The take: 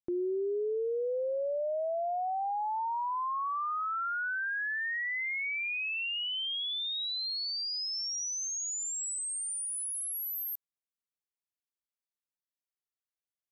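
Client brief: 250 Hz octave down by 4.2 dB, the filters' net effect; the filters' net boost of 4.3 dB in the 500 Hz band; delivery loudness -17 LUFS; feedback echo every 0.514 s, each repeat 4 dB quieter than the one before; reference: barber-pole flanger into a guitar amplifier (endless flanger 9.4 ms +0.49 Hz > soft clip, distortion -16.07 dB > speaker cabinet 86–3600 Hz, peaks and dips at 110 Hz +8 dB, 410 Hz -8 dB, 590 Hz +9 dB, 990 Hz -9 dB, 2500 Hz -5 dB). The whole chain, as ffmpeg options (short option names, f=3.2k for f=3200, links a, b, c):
-filter_complex "[0:a]equalizer=f=250:t=o:g=-4.5,equalizer=f=500:t=o:g=3,aecho=1:1:514|1028|1542|2056|2570|3084|3598|4112|4626:0.631|0.398|0.25|0.158|0.0994|0.0626|0.0394|0.0249|0.0157,asplit=2[a][b];[b]adelay=9.4,afreqshift=0.49[c];[a][c]amix=inputs=2:normalize=1,asoftclip=threshold=-28.5dB,highpass=86,equalizer=f=110:t=q:w=4:g=8,equalizer=f=410:t=q:w=4:g=-8,equalizer=f=590:t=q:w=4:g=9,equalizer=f=990:t=q:w=4:g=-9,equalizer=f=2.5k:t=q:w=4:g=-5,lowpass=f=3.6k:w=0.5412,lowpass=f=3.6k:w=1.3066,volume=18.5dB"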